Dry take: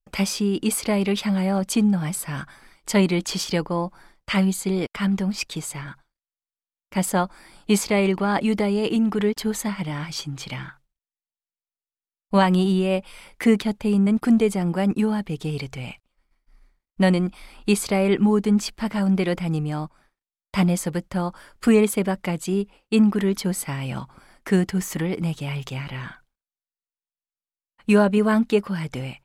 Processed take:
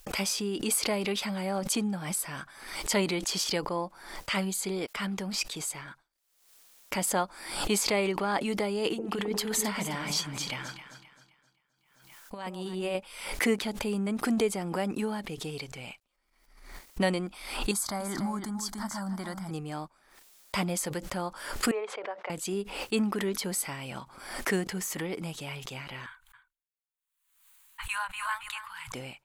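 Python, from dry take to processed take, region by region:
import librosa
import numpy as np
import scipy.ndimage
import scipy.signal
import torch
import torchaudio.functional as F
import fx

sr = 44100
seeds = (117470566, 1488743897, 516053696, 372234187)

y = fx.chain(x, sr, fx.over_compress(threshold_db=-23.0, ratio=-0.5),
    fx.echo_alternate(ms=131, hz=830.0, feedback_pct=59, wet_db=-6.0), at=(8.85, 12.95))
y = fx.chain(y, sr, fx.fixed_phaser(hz=1100.0, stages=4),
    fx.echo_single(ms=291, db=-10.0), at=(17.71, 19.51))
y = fx.chain(y, sr, fx.highpass(hz=500.0, slope=24),
    fx.spacing_loss(db_at_10k=44), at=(21.71, 22.3))
y = fx.chain(y, sr, fx.cheby1_bandstop(low_hz=110.0, high_hz=920.0, order=4),
    fx.peak_eq(hz=5300.0, db=-13.0, octaves=0.47),
    fx.echo_single(ms=274, db=-12.0), at=(26.06, 28.92))
y = fx.bass_treble(y, sr, bass_db=-10, treble_db=4)
y = fx.pre_swell(y, sr, db_per_s=67.0)
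y = y * librosa.db_to_amplitude(-5.5)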